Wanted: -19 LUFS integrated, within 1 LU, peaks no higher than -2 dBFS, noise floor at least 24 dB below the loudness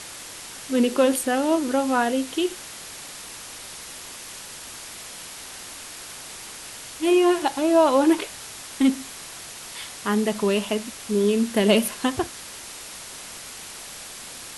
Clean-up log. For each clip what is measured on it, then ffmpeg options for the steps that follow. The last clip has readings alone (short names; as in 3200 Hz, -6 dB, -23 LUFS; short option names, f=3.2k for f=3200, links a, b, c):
noise floor -39 dBFS; noise floor target -47 dBFS; loudness -22.5 LUFS; peak -5.5 dBFS; loudness target -19.0 LUFS
-> -af "afftdn=nr=8:nf=-39"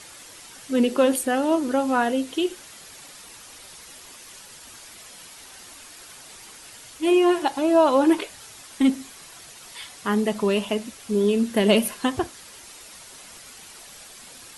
noise floor -45 dBFS; noise floor target -46 dBFS
-> -af "afftdn=nr=6:nf=-45"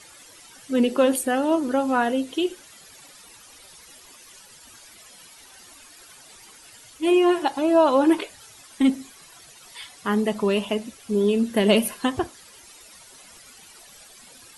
noise floor -49 dBFS; loudness -22.0 LUFS; peak -5.5 dBFS; loudness target -19.0 LUFS
-> -af "volume=3dB"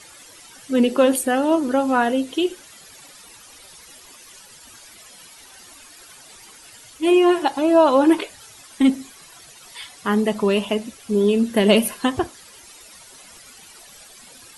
loudness -19.0 LUFS; peak -2.5 dBFS; noise floor -46 dBFS